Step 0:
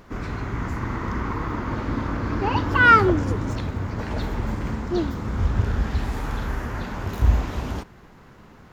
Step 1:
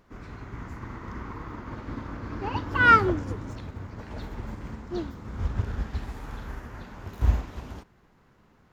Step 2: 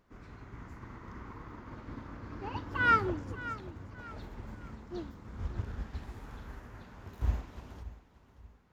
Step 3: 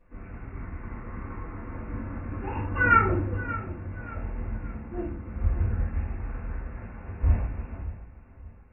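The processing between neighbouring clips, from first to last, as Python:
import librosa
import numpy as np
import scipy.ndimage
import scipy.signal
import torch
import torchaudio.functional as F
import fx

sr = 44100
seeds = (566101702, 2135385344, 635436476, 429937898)

y1 = fx.upward_expand(x, sr, threshold_db=-30.0, expansion=1.5)
y1 = y1 * librosa.db_to_amplitude(-2.5)
y2 = fx.echo_feedback(y1, sr, ms=580, feedback_pct=35, wet_db=-15)
y2 = y2 * librosa.db_to_amplitude(-8.5)
y3 = fx.brickwall_lowpass(y2, sr, high_hz=2800.0)
y3 = fx.room_shoebox(y3, sr, seeds[0], volume_m3=33.0, walls='mixed', distance_m=1.9)
y3 = y3 * librosa.db_to_amplitude(-4.5)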